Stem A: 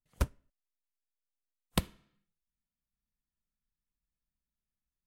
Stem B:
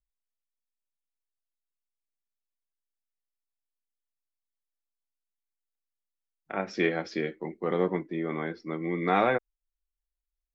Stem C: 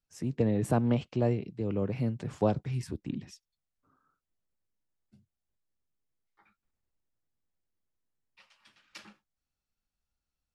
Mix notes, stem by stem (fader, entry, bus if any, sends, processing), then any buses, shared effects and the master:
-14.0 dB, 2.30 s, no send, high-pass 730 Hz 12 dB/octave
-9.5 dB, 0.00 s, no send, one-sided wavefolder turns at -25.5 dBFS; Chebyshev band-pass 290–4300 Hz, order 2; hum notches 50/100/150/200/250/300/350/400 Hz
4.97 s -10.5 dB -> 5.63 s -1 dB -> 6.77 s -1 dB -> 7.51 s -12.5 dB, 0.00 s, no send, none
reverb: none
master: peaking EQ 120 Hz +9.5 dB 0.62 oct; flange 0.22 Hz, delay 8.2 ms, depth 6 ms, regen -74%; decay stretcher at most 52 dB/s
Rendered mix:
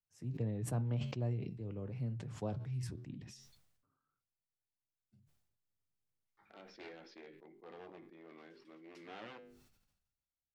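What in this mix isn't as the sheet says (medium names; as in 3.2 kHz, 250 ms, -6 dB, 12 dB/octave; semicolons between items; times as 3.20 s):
stem A: muted; stem B -9.5 dB -> -18.0 dB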